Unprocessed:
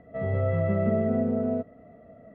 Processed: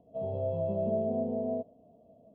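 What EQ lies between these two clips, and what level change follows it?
dynamic EQ 670 Hz, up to +6 dB, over -39 dBFS, Q 1.2; elliptic band-stop 990–2900 Hz, stop band 40 dB; low shelf 120 Hz -8 dB; -7.0 dB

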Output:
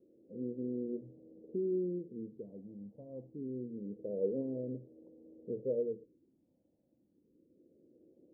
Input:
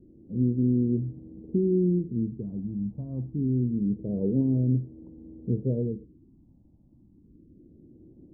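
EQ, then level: synth low-pass 520 Hz, resonance Q 4.9; differentiator; notches 60/120 Hz; +12.0 dB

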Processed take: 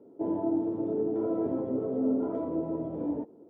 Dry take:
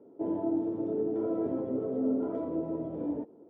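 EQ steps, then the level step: dynamic EQ 930 Hz, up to +4 dB, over -49 dBFS, Q 1.7; low shelf 440 Hz +3.5 dB; -1.0 dB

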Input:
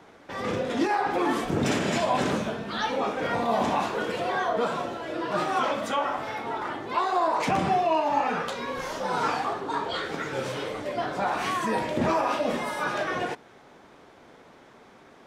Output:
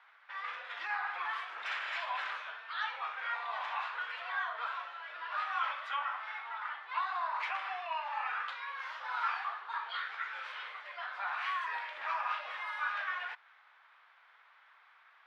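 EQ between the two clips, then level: HPF 1200 Hz 24 dB/oct; air absorption 390 m; 0.0 dB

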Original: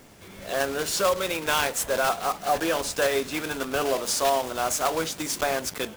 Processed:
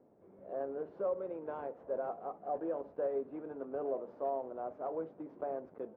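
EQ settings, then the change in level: ladder low-pass 680 Hz, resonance 20%; tilt +4 dB/oct; low shelf 71 Hz -10.5 dB; 0.0 dB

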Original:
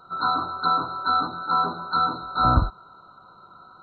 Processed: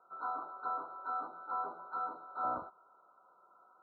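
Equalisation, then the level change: ladder band-pass 740 Hz, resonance 20%; air absorption 320 m; 0.0 dB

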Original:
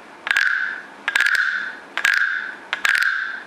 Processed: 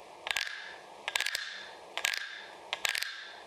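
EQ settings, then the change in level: fixed phaser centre 610 Hz, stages 4; -4.5 dB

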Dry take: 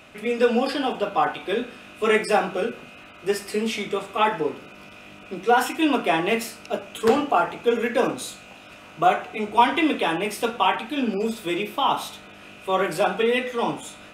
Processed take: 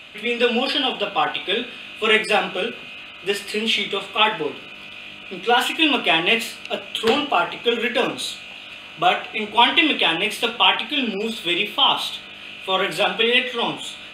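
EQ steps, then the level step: bell 3200 Hz +15 dB 1.1 oct; notch 5500 Hz, Q 5.3; -1.0 dB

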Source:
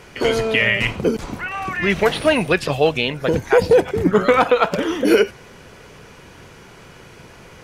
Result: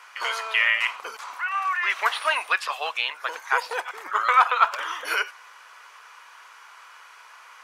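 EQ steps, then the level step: ladder high-pass 960 Hz, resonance 55%; +5.0 dB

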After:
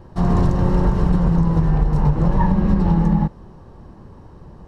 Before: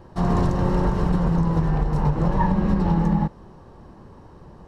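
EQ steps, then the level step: low shelf 210 Hz +6 dB; 0.0 dB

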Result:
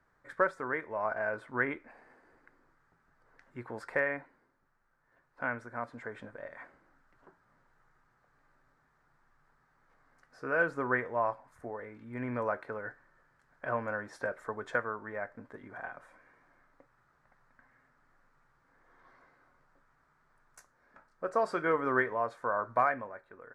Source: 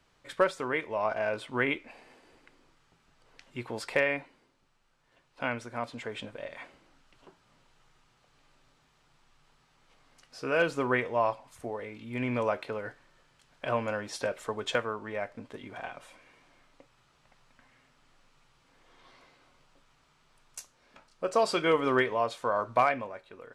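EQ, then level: resonant high shelf 2200 Hz -9.5 dB, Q 3; -5.0 dB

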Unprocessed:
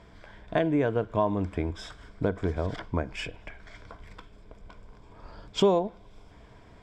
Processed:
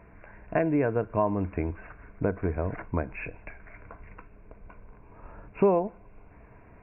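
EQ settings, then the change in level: brick-wall FIR low-pass 2800 Hz; 0.0 dB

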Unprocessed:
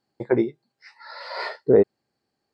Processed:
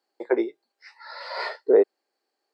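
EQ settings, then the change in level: HPF 350 Hz 24 dB/oct; 0.0 dB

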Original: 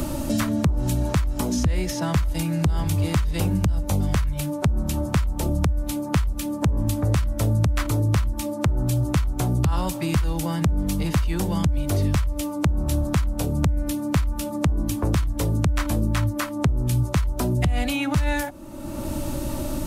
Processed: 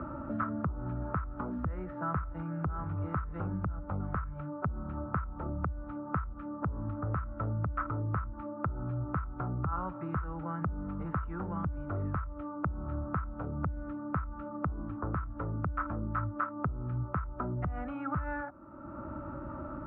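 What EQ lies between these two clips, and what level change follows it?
HPF 54 Hz; ladder low-pass 1400 Hz, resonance 80%; air absorption 270 m; 0.0 dB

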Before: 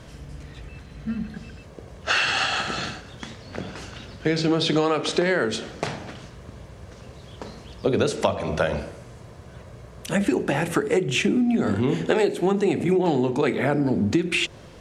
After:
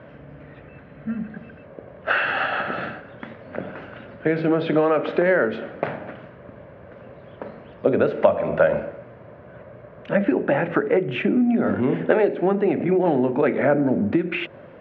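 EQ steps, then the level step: speaker cabinet 130–2400 Hz, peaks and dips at 260 Hz +3 dB, 580 Hz +9 dB, 1500 Hz +4 dB; 0.0 dB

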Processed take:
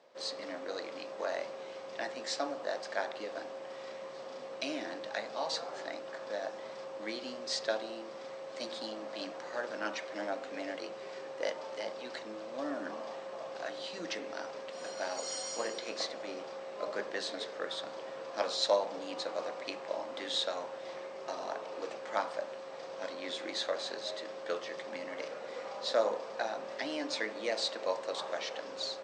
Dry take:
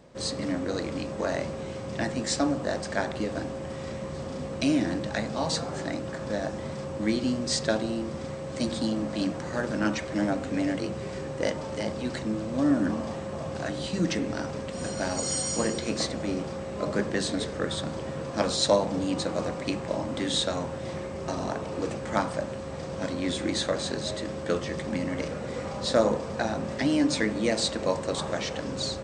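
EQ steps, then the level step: Chebyshev band-pass 560–4900 Hz, order 2; -5.0 dB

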